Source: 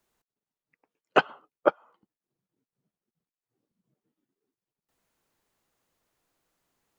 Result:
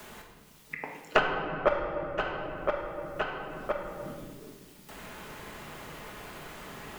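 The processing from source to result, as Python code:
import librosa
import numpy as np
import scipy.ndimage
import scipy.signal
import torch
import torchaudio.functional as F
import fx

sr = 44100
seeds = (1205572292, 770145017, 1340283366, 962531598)

y = fx.diode_clip(x, sr, knee_db=-14.5)
y = fx.peak_eq(y, sr, hz=3200.0, db=2.5, octaves=0.36)
y = fx.rider(y, sr, range_db=10, speed_s=0.5)
y = fx.high_shelf(y, sr, hz=2200.0, db=10.0)
y = fx.echo_feedback(y, sr, ms=1017, feedback_pct=25, wet_db=-21)
y = fx.room_shoebox(y, sr, seeds[0], volume_m3=710.0, walls='mixed', distance_m=1.4)
y = fx.band_squash(y, sr, depth_pct=100)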